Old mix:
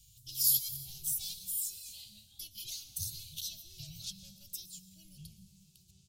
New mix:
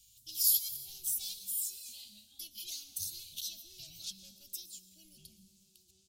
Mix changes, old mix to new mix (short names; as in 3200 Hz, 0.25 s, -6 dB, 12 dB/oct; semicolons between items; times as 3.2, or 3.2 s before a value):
background: add fifteen-band EQ 160 Hz -6 dB, 400 Hz +6 dB, 1000 Hz -3 dB, 2500 Hz -3 dB; master: add resonant low shelf 190 Hz -9 dB, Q 3